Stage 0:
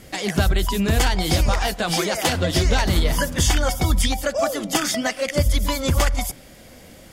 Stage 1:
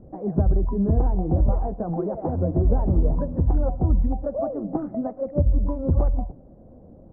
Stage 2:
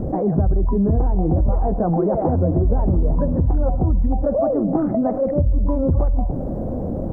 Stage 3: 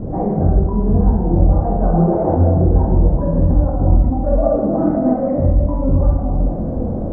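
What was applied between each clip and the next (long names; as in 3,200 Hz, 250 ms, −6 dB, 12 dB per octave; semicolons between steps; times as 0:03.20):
Bessel low-pass filter 530 Hz, order 6
envelope flattener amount 70%
high-frequency loss of the air 79 metres; convolution reverb RT60 1.7 s, pre-delay 5 ms, DRR −6 dB; level −3.5 dB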